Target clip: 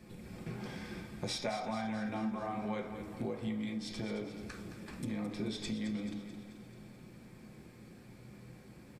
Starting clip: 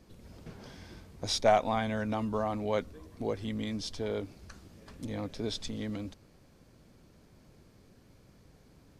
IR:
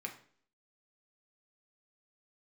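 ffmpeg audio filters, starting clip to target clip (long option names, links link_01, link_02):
-filter_complex "[0:a]asettb=1/sr,asplit=3[link_01][link_02][link_03];[link_01]atrim=end=2.024[link_04];[link_02]atrim=start=2.02:end=2.65,asetpts=PTS-STARTPTS,afade=type=in:duration=0.004:curve=qsin,afade=type=out:start_time=0.626:duration=0.004:curve=qsin,asplit=2[link_05][link_06];[link_06]adelay=40,volume=-4dB[link_07];[link_05][link_07]amix=inputs=2:normalize=0,atrim=end_sample=27783[link_08];[link_03]atrim=start=2.646[link_09];[link_04][link_08]acrossfade=duration=0.004:curve1=hsin:curve2=qsin[link_10];[link_10][link_09]acrossfade=duration=0.004:curve1=qsin:curve2=hsin[link_11];[1:a]atrim=start_sample=2205[link_12];[link_11][link_12]afir=irnorm=-1:irlink=0,acompressor=threshold=-42dB:ratio=6,aecho=1:1:217|434|651|868|1085|1302|1519:0.299|0.173|0.1|0.0582|0.0338|0.0196|0.0114,volume=6.5dB"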